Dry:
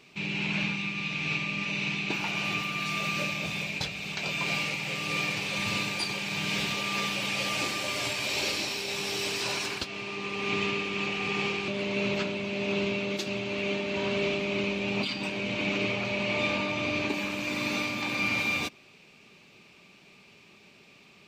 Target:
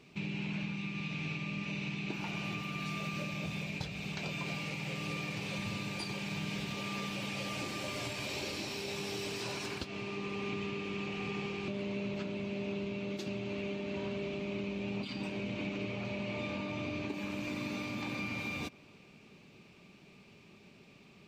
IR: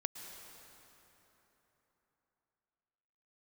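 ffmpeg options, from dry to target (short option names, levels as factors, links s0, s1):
-filter_complex "[0:a]lowshelf=f=410:g=9,acompressor=threshold=0.0355:ratio=6,asplit=2[s0][s1];[1:a]atrim=start_sample=2205,lowpass=2100[s2];[s1][s2]afir=irnorm=-1:irlink=0,volume=0.2[s3];[s0][s3]amix=inputs=2:normalize=0,volume=0.473"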